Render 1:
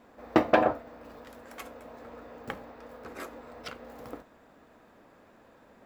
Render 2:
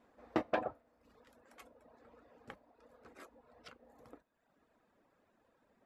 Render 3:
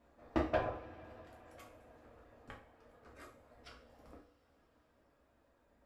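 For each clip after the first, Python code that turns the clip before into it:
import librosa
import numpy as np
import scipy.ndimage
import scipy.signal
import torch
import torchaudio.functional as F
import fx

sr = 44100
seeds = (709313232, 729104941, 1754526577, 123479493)

y1 = fx.dereverb_blind(x, sr, rt60_s=0.94)
y1 = scipy.signal.sosfilt(scipy.signal.butter(4, 12000.0, 'lowpass', fs=sr, output='sos'), y1)
y1 = fx.rider(y1, sr, range_db=10, speed_s=2.0)
y1 = y1 * 10.0 ** (-7.5 / 20.0)
y2 = fx.octave_divider(y1, sr, octaves=2, level_db=1.0)
y2 = fx.rev_double_slope(y2, sr, seeds[0], early_s=0.39, late_s=4.8, knee_db=-22, drr_db=-1.5)
y2 = y2 * 10.0 ** (-3.5 / 20.0)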